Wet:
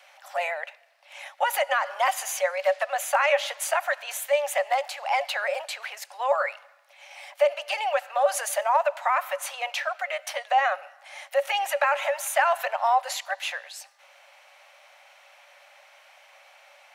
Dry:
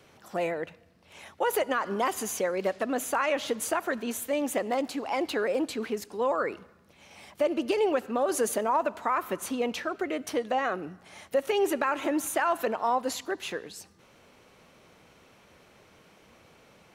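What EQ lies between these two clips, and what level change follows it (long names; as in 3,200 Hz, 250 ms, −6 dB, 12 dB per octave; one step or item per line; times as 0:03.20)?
Chebyshev high-pass with heavy ripple 550 Hz, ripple 6 dB
+8.5 dB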